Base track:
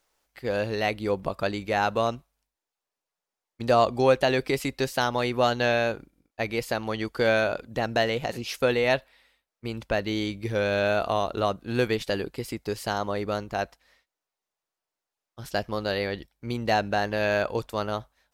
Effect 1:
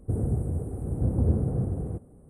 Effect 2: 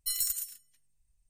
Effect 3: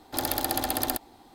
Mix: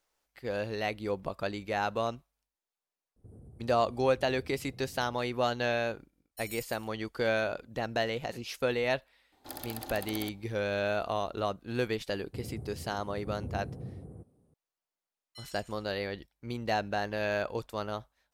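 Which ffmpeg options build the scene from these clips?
-filter_complex "[1:a]asplit=2[s0][s1];[2:a]asplit=2[s2][s3];[0:a]volume=0.473[s4];[s0]acompressor=threshold=0.0316:ratio=6:attack=3.2:release=140:knee=1:detection=peak[s5];[s1]highpass=78[s6];[s3]highpass=620,lowpass=2900[s7];[s5]atrim=end=2.29,asetpts=PTS-STARTPTS,volume=0.126,afade=t=in:d=0.004:c=hsin,afade=t=out:st=2.286:d=0.004:c=hsin,adelay=3160[s8];[s2]atrim=end=1.29,asetpts=PTS-STARTPTS,volume=0.178,afade=t=in:d=0.004:c=hsin,afade=t=out:st=1.286:d=0.004:c=hsin,adelay=6310[s9];[3:a]atrim=end=1.34,asetpts=PTS-STARTPTS,volume=0.2,afade=t=in:d=0.004:c=hsin,afade=t=out:st=1.336:d=0.004:c=hsin,adelay=9320[s10];[s6]atrim=end=2.29,asetpts=PTS-STARTPTS,volume=0.211,afade=t=in:d=0.004:c=hsin,afade=t=out:st=2.286:d=0.004:c=hsin,adelay=12250[s11];[s7]atrim=end=1.29,asetpts=PTS-STARTPTS,volume=0.596,afade=t=in:d=0.004:c=hsin,afade=t=out:st=1.286:d=0.004:c=hsin,adelay=15290[s12];[s4][s8][s9][s10][s11][s12]amix=inputs=6:normalize=0"

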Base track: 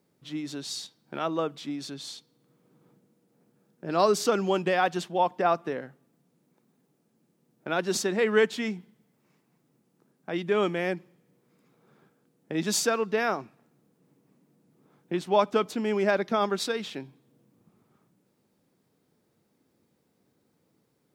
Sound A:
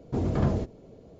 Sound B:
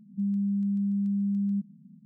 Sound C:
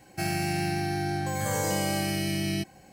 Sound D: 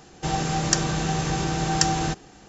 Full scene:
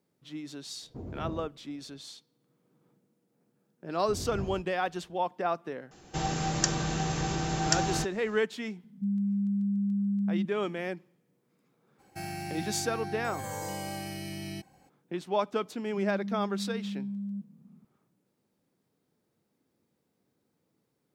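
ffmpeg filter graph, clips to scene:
-filter_complex "[1:a]asplit=2[s0][s1];[2:a]asplit=2[s2][s3];[0:a]volume=0.501[s4];[s0]equalizer=f=4500:w=0.38:g=-9[s5];[s1]lowshelf=f=120:g=8[s6];[3:a]equalizer=f=880:w=4.3:g=7[s7];[s3]acompressor=threshold=0.0316:ratio=6:attack=3.2:release=140:knee=1:detection=peak[s8];[s5]atrim=end=1.19,asetpts=PTS-STARTPTS,volume=0.211,afade=t=in:d=0.004:c=hsin,afade=t=out:st=1.186:d=0.004:c=hsin,adelay=820[s9];[s6]atrim=end=1.19,asetpts=PTS-STARTPTS,volume=0.168,afade=t=in:d=0.004:c=hsin,afade=t=out:st=1.186:d=0.004:c=hsin,adelay=3960[s10];[4:a]atrim=end=2.48,asetpts=PTS-STARTPTS,volume=0.531,afade=t=in:d=0.004:c=hsin,afade=t=out:st=2.476:d=0.004:c=hsin,adelay=5910[s11];[s2]atrim=end=2.05,asetpts=PTS-STARTPTS,volume=0.841,afade=t=in:d=0.004:c=hsin,afade=t=out:st=2.046:d=0.004:c=hsin,adelay=8840[s12];[s7]atrim=end=2.92,asetpts=PTS-STARTPTS,volume=0.316,afade=t=in:d=0.02,afade=t=out:st=2.9:d=0.02,adelay=11980[s13];[s8]atrim=end=2.05,asetpts=PTS-STARTPTS,volume=0.668,afade=t=in:d=0.004:c=hsin,afade=t=out:st=2.046:d=0.004:c=hsin,adelay=15800[s14];[s4][s9][s10][s11][s12][s13][s14]amix=inputs=7:normalize=0"

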